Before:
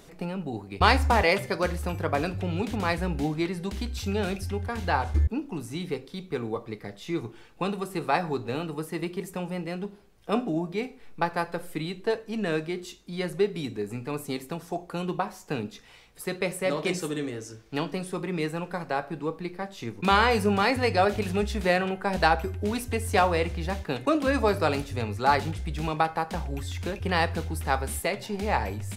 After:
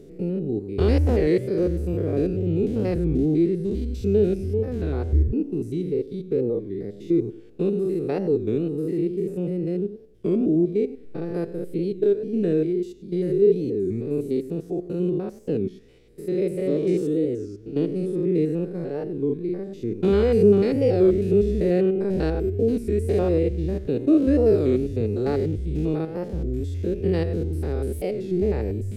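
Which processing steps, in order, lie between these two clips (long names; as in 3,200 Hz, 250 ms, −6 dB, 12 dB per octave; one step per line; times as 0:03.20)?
spectrum averaged block by block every 100 ms
low shelf with overshoot 610 Hz +14 dB, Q 3
wow of a warped record 33 1/3 rpm, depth 160 cents
level −8.5 dB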